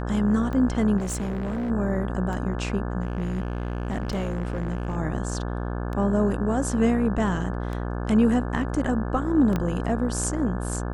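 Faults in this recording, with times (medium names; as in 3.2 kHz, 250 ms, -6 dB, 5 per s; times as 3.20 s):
buzz 60 Hz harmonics 29 -29 dBFS
tick 33 1/3 rpm -21 dBFS
0.97–1.71 s: clipped -25 dBFS
3.01–4.97 s: clipped -23 dBFS
9.56 s: pop -13 dBFS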